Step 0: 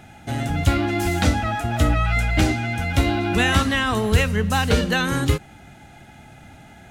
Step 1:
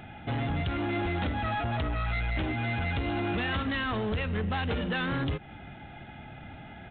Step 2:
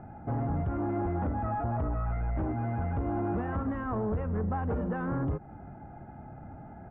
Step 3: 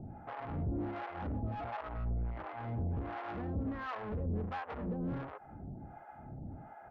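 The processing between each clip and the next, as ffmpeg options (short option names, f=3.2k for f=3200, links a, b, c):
-af "acompressor=threshold=-22dB:ratio=6,aresample=8000,asoftclip=type=tanh:threshold=-25.5dB,aresample=44100"
-af "lowpass=f=1.2k:w=0.5412,lowpass=f=1.2k:w=1.3066"
-filter_complex "[0:a]asoftclip=type=tanh:threshold=-33dB,acrossover=split=580[a][b];[a]aeval=exprs='val(0)*(1-1/2+1/2*cos(2*PI*1.4*n/s))':c=same[c];[b]aeval=exprs='val(0)*(1-1/2-1/2*cos(2*PI*1.4*n/s))':c=same[d];[c][d]amix=inputs=2:normalize=0,volume=2.5dB"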